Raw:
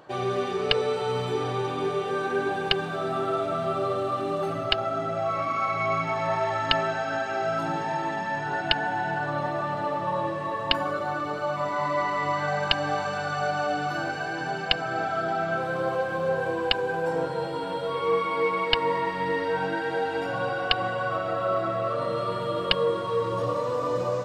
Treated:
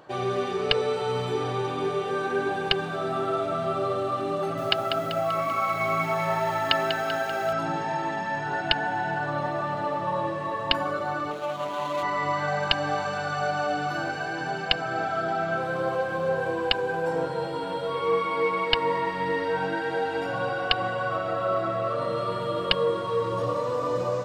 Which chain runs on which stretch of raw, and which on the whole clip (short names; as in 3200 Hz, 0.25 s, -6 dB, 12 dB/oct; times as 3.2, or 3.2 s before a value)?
4.38–7.53 HPF 100 Hz + lo-fi delay 0.194 s, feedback 55%, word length 7-bit, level -7.5 dB
11.31–12.03 median filter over 25 samples + HPF 240 Hz 6 dB/oct
whole clip: dry